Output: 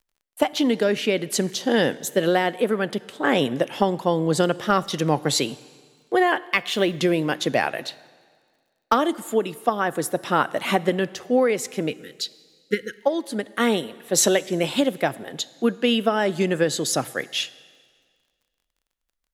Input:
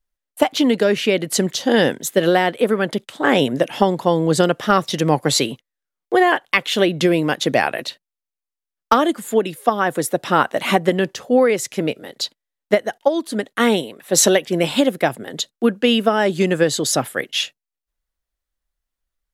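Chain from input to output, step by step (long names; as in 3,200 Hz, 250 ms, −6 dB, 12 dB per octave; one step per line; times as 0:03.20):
0:06.47–0:06.97: mu-law and A-law mismatch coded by A
0:11.90–0:13.00: time-frequency box erased 520–1,300 Hz
on a send at −18.5 dB: convolution reverb RT60 1.8 s, pre-delay 6 ms
on the sum: surface crackle 39 per second −48 dBFS
level −4.5 dB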